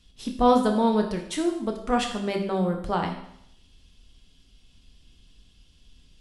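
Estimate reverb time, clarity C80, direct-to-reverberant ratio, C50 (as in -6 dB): 0.75 s, 10.5 dB, 3.0 dB, 7.5 dB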